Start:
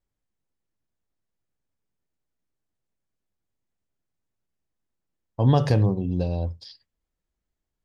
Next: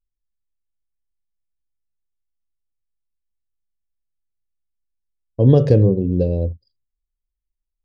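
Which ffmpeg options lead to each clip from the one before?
-af "lowshelf=f=640:t=q:w=3:g=9,anlmdn=39.8,volume=-3.5dB"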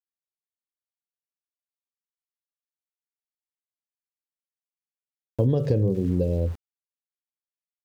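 -af "aeval=exprs='val(0)*gte(abs(val(0)),0.0126)':c=same,acompressor=threshold=-19dB:ratio=5"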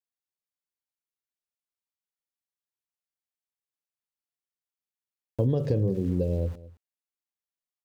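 -af "aecho=1:1:216:0.112,volume=-3dB"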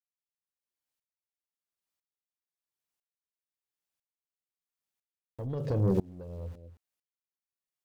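-af "asoftclip=type=tanh:threshold=-22dB,aeval=exprs='val(0)*pow(10,-27*if(lt(mod(-1*n/s,1),2*abs(-1)/1000),1-mod(-1*n/s,1)/(2*abs(-1)/1000),(mod(-1*n/s,1)-2*abs(-1)/1000)/(1-2*abs(-1)/1000))/20)':c=same,volume=6dB"

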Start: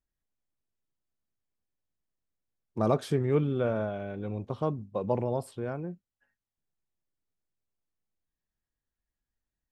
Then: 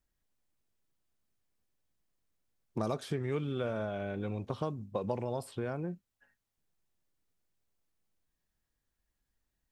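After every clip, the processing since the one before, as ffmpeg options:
-filter_complex "[0:a]acrossover=split=1200|3900[a][b][c];[a]acompressor=threshold=-39dB:ratio=4[d];[b]acompressor=threshold=-53dB:ratio=4[e];[c]acompressor=threshold=-57dB:ratio=4[f];[d][e][f]amix=inputs=3:normalize=0,volume=5.5dB"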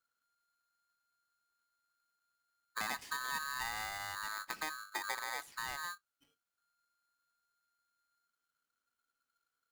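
-af "aeval=exprs='val(0)*sgn(sin(2*PI*1400*n/s))':c=same,volume=-5.5dB"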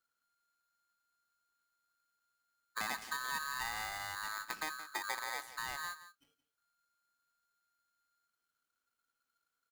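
-af "aecho=1:1:172:0.2"

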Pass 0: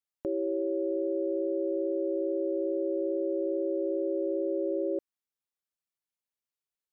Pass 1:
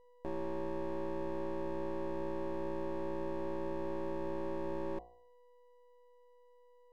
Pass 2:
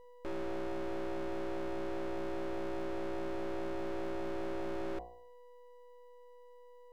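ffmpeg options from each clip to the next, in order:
-af "aeval=exprs='val(0)+0.00251*sin(2*PI*490*n/s)':c=same,aeval=exprs='max(val(0),0)':c=same,bandreject=f=60.13:t=h:w=4,bandreject=f=120.26:t=h:w=4,bandreject=f=180.39:t=h:w=4,bandreject=f=240.52:t=h:w=4,bandreject=f=300.65:t=h:w=4,bandreject=f=360.78:t=h:w=4,bandreject=f=420.91:t=h:w=4,bandreject=f=481.04:t=h:w=4,bandreject=f=541.17:t=h:w=4,bandreject=f=601.3:t=h:w=4,bandreject=f=661.43:t=h:w=4,bandreject=f=721.56:t=h:w=4,bandreject=f=781.69:t=h:w=4,bandreject=f=841.82:t=h:w=4,bandreject=f=901.95:t=h:w=4,bandreject=f=962.08:t=h:w=4,bandreject=f=1.02221k:t=h:w=4,bandreject=f=1.08234k:t=h:w=4,bandreject=f=1.14247k:t=h:w=4,volume=-4dB"
-af "asoftclip=type=tanh:threshold=-39dB,volume=7dB"

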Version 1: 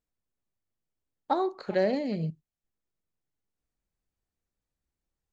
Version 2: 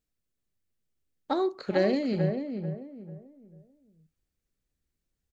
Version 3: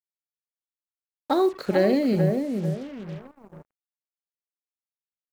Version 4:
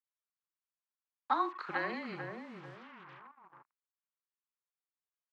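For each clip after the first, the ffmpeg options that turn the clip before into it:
-filter_complex "[0:a]equalizer=f=870:w=1.3:g=-8.5,asplit=2[a][b];[b]adelay=441,lowpass=f=1.2k:p=1,volume=-5.5dB,asplit=2[c][d];[d]adelay=441,lowpass=f=1.2k:p=1,volume=0.33,asplit=2[e][f];[f]adelay=441,lowpass=f=1.2k:p=1,volume=0.33,asplit=2[g][h];[h]adelay=441,lowpass=f=1.2k:p=1,volume=0.33[i];[c][e][g][i]amix=inputs=4:normalize=0[j];[a][j]amix=inputs=2:normalize=0,volume=3.5dB"
-filter_complex "[0:a]asplit=2[a][b];[b]alimiter=limit=-20.5dB:level=0:latency=1,volume=1.5dB[c];[a][c]amix=inputs=2:normalize=0,acrusher=bits=6:mix=0:aa=0.5,adynamicequalizer=threshold=0.01:dfrequency=1900:dqfactor=0.7:tfrequency=1900:tqfactor=0.7:attack=5:release=100:ratio=0.375:range=2.5:mode=cutabove:tftype=highshelf"
-af "highpass=340,lowpass=2.5k,afreqshift=-24,lowshelf=f=760:t=q:w=3:g=-10.5,volume=-4dB"

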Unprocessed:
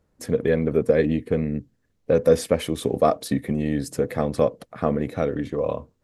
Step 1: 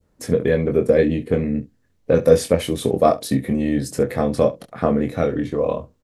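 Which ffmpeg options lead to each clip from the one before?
-filter_complex "[0:a]adynamicequalizer=threshold=0.0178:dfrequency=1300:dqfactor=0.71:tfrequency=1300:tqfactor=0.71:attack=5:release=100:ratio=0.375:range=2:mode=cutabove:tftype=bell,asplit=2[a][b];[b]aecho=0:1:23|68:0.531|0.133[c];[a][c]amix=inputs=2:normalize=0,volume=3dB"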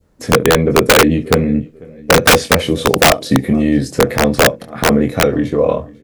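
-filter_complex "[0:a]acrossover=split=6600[a][b];[b]acompressor=threshold=-46dB:ratio=4:attack=1:release=60[c];[a][c]amix=inputs=2:normalize=0,aecho=1:1:495|990:0.0668|0.0227,aeval=exprs='(mod(2.82*val(0)+1,2)-1)/2.82':c=same,volume=7dB"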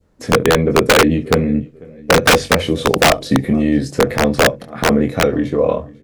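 -af "highshelf=f=9.8k:g=-7.5,bandreject=f=47.05:t=h:w=4,bandreject=f=94.1:t=h:w=4,bandreject=f=141.15:t=h:w=4,volume=-1.5dB"

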